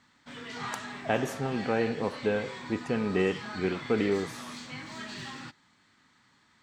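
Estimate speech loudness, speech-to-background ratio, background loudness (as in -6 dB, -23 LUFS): -30.5 LUFS, 10.0 dB, -40.5 LUFS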